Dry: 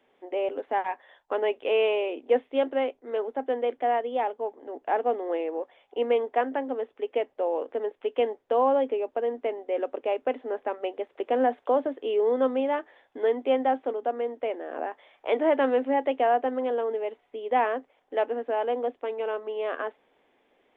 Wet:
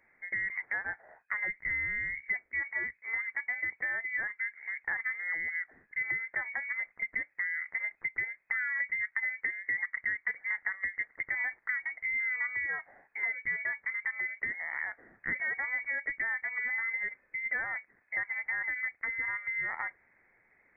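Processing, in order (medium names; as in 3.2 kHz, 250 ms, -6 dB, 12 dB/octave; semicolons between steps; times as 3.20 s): 8.80–11.16 s: peaking EQ 700 Hz +9 dB 2.2 oct; compression 6:1, threshold -31 dBFS, peak gain reduction 16 dB; frequency inversion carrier 2.5 kHz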